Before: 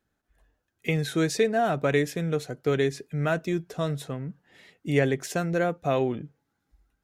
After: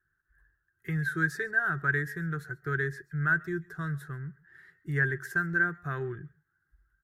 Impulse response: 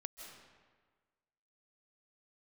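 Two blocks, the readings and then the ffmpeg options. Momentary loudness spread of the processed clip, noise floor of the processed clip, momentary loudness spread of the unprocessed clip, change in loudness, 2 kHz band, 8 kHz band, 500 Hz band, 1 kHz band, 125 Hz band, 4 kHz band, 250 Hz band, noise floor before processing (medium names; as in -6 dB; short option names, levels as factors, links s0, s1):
12 LU, -79 dBFS, 11 LU, -3.5 dB, +6.5 dB, under -10 dB, -13.5 dB, -5.0 dB, -3.0 dB, under -15 dB, -8.0 dB, -79 dBFS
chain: -filter_complex "[0:a]firequalizer=gain_entry='entry(160,0);entry(230,-22);entry(360,-2);entry(530,-24);entry(1600,14);entry(2400,-19);entry(4500,-13);entry(6600,-14);entry(12000,-4)':delay=0.05:min_phase=1[s0];[1:a]atrim=start_sample=2205,atrim=end_sample=6174[s1];[s0][s1]afir=irnorm=-1:irlink=0,volume=1.33"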